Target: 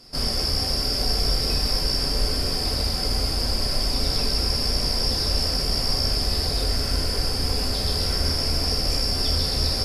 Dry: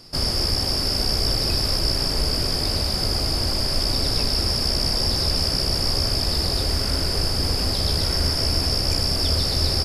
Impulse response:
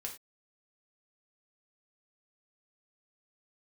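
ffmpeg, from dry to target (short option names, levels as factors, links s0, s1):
-filter_complex "[1:a]atrim=start_sample=2205[s0];[0:a][s0]afir=irnorm=-1:irlink=0" -ar 48000 -c:a libopus -b:a 96k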